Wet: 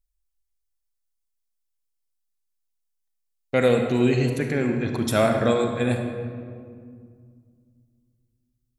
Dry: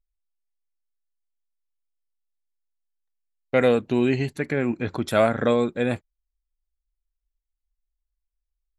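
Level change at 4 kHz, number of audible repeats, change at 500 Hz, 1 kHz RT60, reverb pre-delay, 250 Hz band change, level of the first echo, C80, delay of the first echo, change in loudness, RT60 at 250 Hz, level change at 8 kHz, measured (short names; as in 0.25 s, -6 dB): +2.5 dB, none, 0.0 dB, 2.0 s, 31 ms, +1.0 dB, none, 6.0 dB, none, 0.0 dB, 3.0 s, +7.0 dB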